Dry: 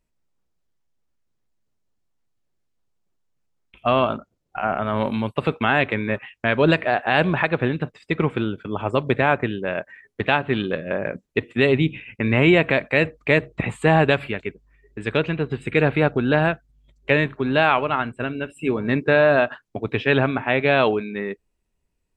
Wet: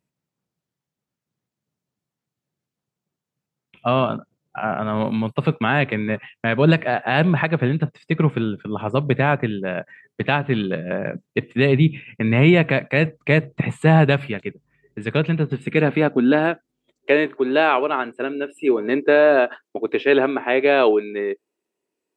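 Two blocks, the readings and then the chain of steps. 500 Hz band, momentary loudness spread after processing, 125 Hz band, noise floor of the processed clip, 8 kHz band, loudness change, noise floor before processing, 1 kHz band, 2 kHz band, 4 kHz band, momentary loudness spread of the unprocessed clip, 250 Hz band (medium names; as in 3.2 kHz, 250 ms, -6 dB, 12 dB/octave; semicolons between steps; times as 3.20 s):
+1.5 dB, 12 LU, +4.0 dB, under -85 dBFS, no reading, +1.5 dB, -74 dBFS, -0.5 dB, -1.0 dB, -1.0 dB, 11 LU, +2.5 dB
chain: high-pass sweep 140 Hz -> 350 Hz, 15.29–16.89 s; trim -1 dB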